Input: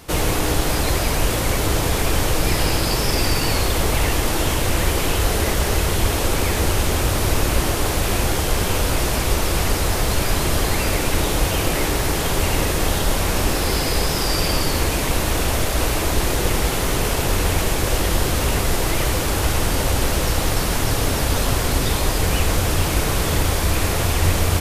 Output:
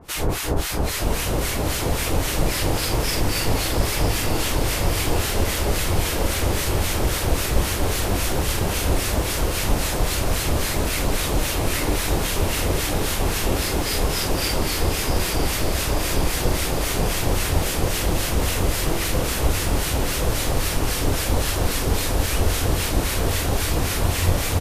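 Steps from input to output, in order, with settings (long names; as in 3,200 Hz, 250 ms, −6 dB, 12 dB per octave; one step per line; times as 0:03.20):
two-band tremolo in antiphase 3.7 Hz, depth 100%, crossover 1,200 Hz
double-tracking delay 44 ms −12 dB
feedback delay with all-pass diffusion 907 ms, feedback 67%, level −5 dB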